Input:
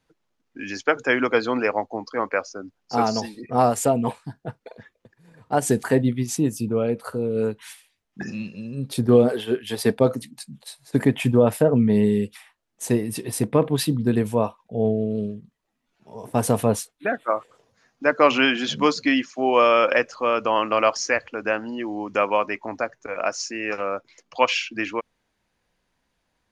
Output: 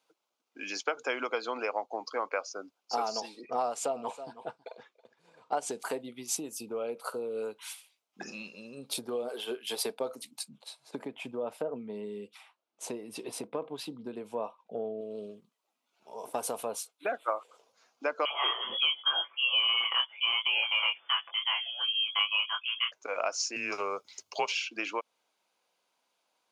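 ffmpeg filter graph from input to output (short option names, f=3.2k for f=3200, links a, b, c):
-filter_complex "[0:a]asettb=1/sr,asplit=3[a][b][c];[a]atrim=end=3.204[d];[b]atrim=start=3.2:end=5.8,asetpts=PTS-STARTPTS,afade=t=in:d=0.004:c=qsin,afade=t=out:st=2.596:d=0.004:c=qsin,lowpass=6.6k,aecho=1:1:323:0.1,atrim=end_sample=114660[e];[c]atrim=start=5.796[f];[d][e]acrossfade=d=0.004:c1=hsin:c2=qsin[g];[g][f]acrossfade=d=0.004:c1=qsin:c2=hsin,asettb=1/sr,asplit=3[h][i][j];[h]atrim=end=10.484[k];[i]atrim=start=10.48:end=15.01,asetpts=PTS-STARTPTS,afade=t=in:d=0.004:c=qsin,afade=t=out:st=4.526:d=0.004:c=qsin,highpass=150,aemphasis=mode=reproduction:type=bsi[l];[j]atrim=start=15.006[m];[k][l]acrossfade=d=0.004:c1=hsin:c2=qsin[n];[n][m]acrossfade=d=0.004:c1=qsin:c2=hsin,asettb=1/sr,asplit=3[o][p][q];[o]atrim=end=18.254[r];[p]atrim=start=18.25:end=22.92,asetpts=PTS-STARTPTS,afade=t=in:d=0.004:c=qsin,afade=t=out:st=4.666:d=0.004:c=qsin,aecho=1:1:6.4:0.7,atrim=end_sample=205947,flanger=delay=19.5:depth=6.2:speed=1,lowpass=f=3k:t=q:w=0.5098,lowpass=f=3k:t=q:w=0.6013,lowpass=f=3k:t=q:w=0.9,lowpass=f=3k:t=q:w=2.563,afreqshift=-3500[s];[q]atrim=start=22.916[t];[r][s]acrossfade=d=0.004:c1=hsin:c2=qsin[u];[u][t]acrossfade=d=0.004:c1=qsin:c2=hsin,asettb=1/sr,asplit=3[v][w][x];[v]atrim=end=23.564[y];[w]atrim=start=23.56:end=24.52,asetpts=PTS-STARTPTS,afade=t=in:d=0.004:c=qsin,afade=t=out:st=0.956:d=0.004:c=qsin,bass=f=250:g=13,treble=f=4k:g=10,afreqshift=-96[z];[x]atrim=start=24.516[aa];[y][z]acrossfade=d=0.004:c1=hsin:c2=qsin[ab];[ab][aa]acrossfade=d=0.004:c1=qsin:c2=hsin,equalizer=f=1.8k:w=5:g=-14.5,acompressor=threshold=-25dB:ratio=6,highpass=550"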